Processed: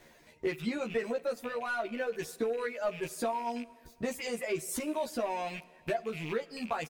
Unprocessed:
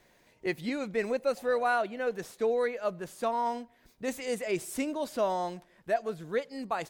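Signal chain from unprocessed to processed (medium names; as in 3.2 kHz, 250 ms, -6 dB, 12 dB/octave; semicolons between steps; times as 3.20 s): rattle on loud lows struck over -47 dBFS, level -33 dBFS; reverb removal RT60 0.99 s; waveshaping leveller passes 1; compression 5:1, threshold -40 dBFS, peak gain reduction 16 dB; doubling 13 ms -2 dB; plate-style reverb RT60 2 s, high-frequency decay 0.95×, DRR 18 dB; trim +5.5 dB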